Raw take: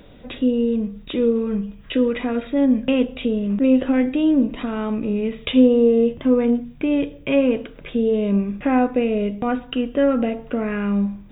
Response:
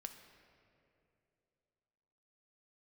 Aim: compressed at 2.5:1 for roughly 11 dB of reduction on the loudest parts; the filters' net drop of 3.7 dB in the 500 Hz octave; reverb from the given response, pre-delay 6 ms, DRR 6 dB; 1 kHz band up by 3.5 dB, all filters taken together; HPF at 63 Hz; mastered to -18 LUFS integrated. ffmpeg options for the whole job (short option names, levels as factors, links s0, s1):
-filter_complex "[0:a]highpass=63,equalizer=f=500:t=o:g=-5.5,equalizer=f=1000:t=o:g=7.5,acompressor=threshold=0.0447:ratio=2.5,asplit=2[s0][s1];[1:a]atrim=start_sample=2205,adelay=6[s2];[s1][s2]afir=irnorm=-1:irlink=0,volume=0.841[s3];[s0][s3]amix=inputs=2:normalize=0,volume=3.35"